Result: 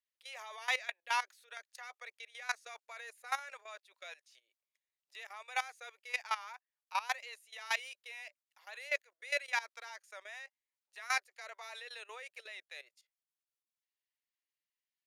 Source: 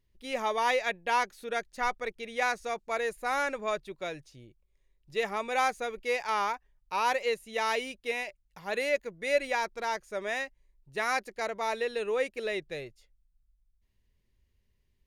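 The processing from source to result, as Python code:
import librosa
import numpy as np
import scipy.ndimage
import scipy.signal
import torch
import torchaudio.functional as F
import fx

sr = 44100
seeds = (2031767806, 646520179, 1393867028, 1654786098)

y = scipy.signal.sosfilt(scipy.signal.bessel(6, 1100.0, 'highpass', norm='mag', fs=sr, output='sos'), x)
y = fx.rotary(y, sr, hz=5.0)
y = fx.level_steps(y, sr, step_db=17)
y = F.gain(torch.from_numpy(y), 3.5).numpy()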